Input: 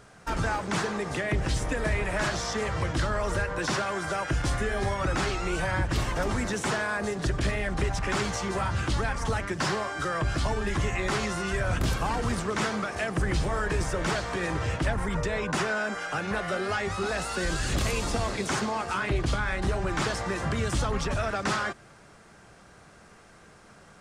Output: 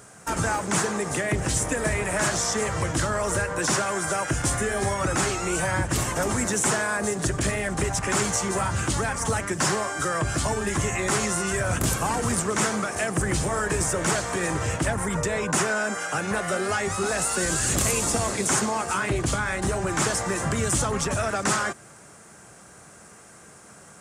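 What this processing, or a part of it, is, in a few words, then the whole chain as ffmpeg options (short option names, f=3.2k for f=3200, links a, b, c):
budget condenser microphone: -af "highpass=82,highshelf=f=5.8k:t=q:w=1.5:g=9.5,volume=3.5dB"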